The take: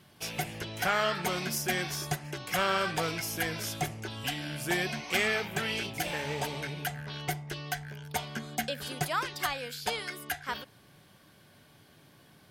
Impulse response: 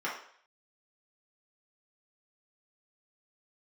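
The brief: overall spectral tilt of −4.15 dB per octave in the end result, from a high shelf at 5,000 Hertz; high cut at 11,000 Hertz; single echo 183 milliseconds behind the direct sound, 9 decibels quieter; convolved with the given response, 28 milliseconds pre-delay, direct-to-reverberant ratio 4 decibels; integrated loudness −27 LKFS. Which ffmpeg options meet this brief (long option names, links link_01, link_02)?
-filter_complex "[0:a]lowpass=11000,highshelf=frequency=5000:gain=-6.5,aecho=1:1:183:0.355,asplit=2[link_01][link_02];[1:a]atrim=start_sample=2205,adelay=28[link_03];[link_02][link_03]afir=irnorm=-1:irlink=0,volume=-11dB[link_04];[link_01][link_04]amix=inputs=2:normalize=0,volume=4.5dB"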